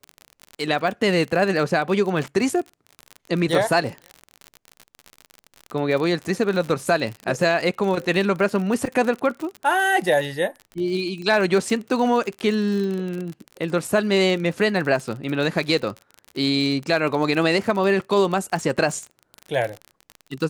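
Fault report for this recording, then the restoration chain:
crackle 46 per s -27 dBFS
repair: de-click

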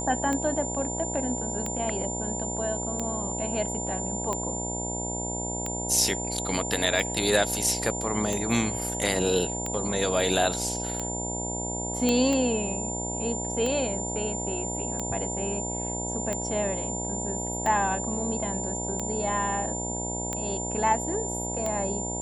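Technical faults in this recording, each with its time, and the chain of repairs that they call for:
buzz 60 Hz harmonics 16 -34 dBFS
tick 45 rpm -16 dBFS
whine 7.2 kHz -32 dBFS
12.09 s: pop -10 dBFS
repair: de-click; de-hum 60 Hz, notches 16; band-stop 7.2 kHz, Q 30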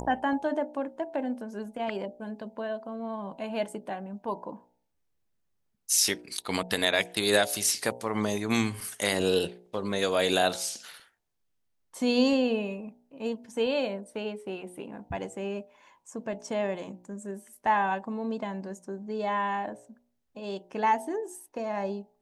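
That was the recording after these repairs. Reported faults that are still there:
nothing left

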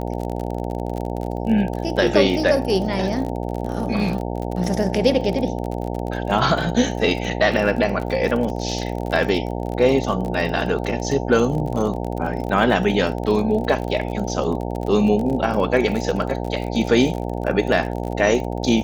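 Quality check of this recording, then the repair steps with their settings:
buzz 60 Hz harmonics 15 -26 dBFS
crackle 40 per s -26 dBFS
1.76 s: dropout 2.7 ms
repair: de-click; de-hum 60 Hz, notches 15; interpolate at 1.76 s, 2.7 ms

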